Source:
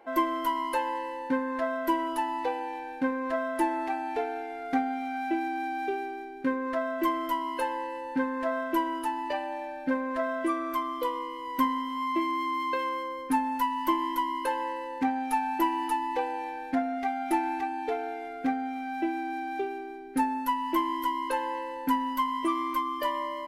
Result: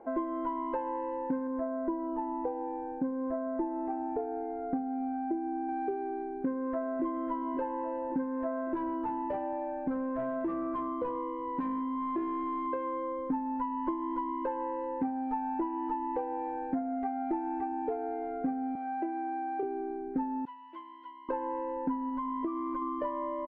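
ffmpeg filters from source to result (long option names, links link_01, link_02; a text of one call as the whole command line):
ffmpeg -i in.wav -filter_complex "[0:a]asettb=1/sr,asplit=3[link_01][link_02][link_03];[link_01]atrim=end=1.474[link_04];[link_02]atrim=start=1.47:end=5.69,asetpts=PTS-STARTPTS,afade=type=in:duration=0.004:curve=qsin,afade=type=out:start_time=4.216:duration=0.004:curve=qsin,equalizer=frequency=4800:width=0.32:gain=-12[link_05];[link_03]atrim=start=5.686[link_06];[link_04][link_05]acrossfade=duration=0.004:curve1=hsin:curve2=qsin[link_07];[link_07][link_06]acrossfade=duration=0.004:curve1=qsin:curve2=hsin,asplit=2[link_08][link_09];[link_09]afade=type=in:start_time=6.25:duration=0.01,afade=type=out:start_time=7.04:duration=0.01,aecho=0:1:550|1100|1650|2200:0.298538|0.119415|0.0477661|0.0191064[link_10];[link_08][link_10]amix=inputs=2:normalize=0,asettb=1/sr,asplit=3[link_11][link_12][link_13];[link_11]atrim=end=8.664[link_14];[link_12]atrim=start=8.66:end=12.67,asetpts=PTS-STARTPTS,afade=type=in:duration=0.004:curve=qsin,afade=type=out:start_time=4.006:duration=0.004:curve=qsin,asoftclip=type=hard:threshold=-27.5dB[link_15];[link_13]atrim=start=12.666[link_16];[link_14][link_15]acrossfade=duration=0.004:curve1=hsin:curve2=qsin[link_17];[link_17][link_16]acrossfade=duration=0.004:curve1=qsin:curve2=hsin,asettb=1/sr,asplit=3[link_18][link_19][link_20];[link_18]atrim=end=18.754[link_21];[link_19]atrim=start=18.75:end=19.63,asetpts=PTS-STARTPTS,afade=type=in:duration=0.004:curve=qsin,afade=type=out:start_time=0.876:duration=0.004:curve=qsin,highpass=450,lowpass=4500[link_22];[link_20]atrim=start=19.626[link_23];[link_21][link_22]acrossfade=duration=0.004:curve1=hsin:curve2=qsin[link_24];[link_24][link_23]acrossfade=duration=0.004:curve1=qsin:curve2=hsin,asettb=1/sr,asplit=3[link_25][link_26][link_27];[link_25]atrim=end=20.454[link_28];[link_26]atrim=start=20.45:end=21.29,asetpts=PTS-STARTPTS,afade=type=in:duration=0.004:curve=qsin,afade=type=out:start_time=0.836:duration=0.004:curve=qsin,bandpass=frequency=3500:width_type=q:width=2.4[link_29];[link_27]atrim=start=21.286[link_30];[link_28][link_29]acrossfade=duration=0.004:curve1=hsin:curve2=qsin[link_31];[link_31][link_30]acrossfade=duration=0.004:curve1=qsin:curve2=hsin,asettb=1/sr,asplit=3[link_32][link_33][link_34];[link_32]atrim=end=22.094[link_35];[link_33]atrim=start=22.09:end=22.82,asetpts=PTS-STARTPTS,afade=type=in:duration=0.004:curve=qsin,afade=type=out:start_time=0.726:duration=0.004:curve=qsin,acompressor=threshold=-30dB:ratio=3:attack=3.2:release=140:knee=1:detection=peak[link_36];[link_34]atrim=start=22.816[link_37];[link_35][link_36]acrossfade=duration=0.004:curve1=hsin:curve2=qsin[link_38];[link_38][link_37]acrossfade=duration=0.004:curve1=qsin:curve2=hsin,lowpass=1400,tiltshelf=frequency=1100:gain=7.5,acompressor=threshold=-31dB:ratio=4" out.wav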